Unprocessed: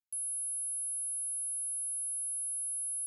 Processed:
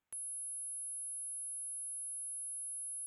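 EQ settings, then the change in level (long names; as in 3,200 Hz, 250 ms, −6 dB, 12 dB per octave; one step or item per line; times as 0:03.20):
moving average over 9 samples
+15.5 dB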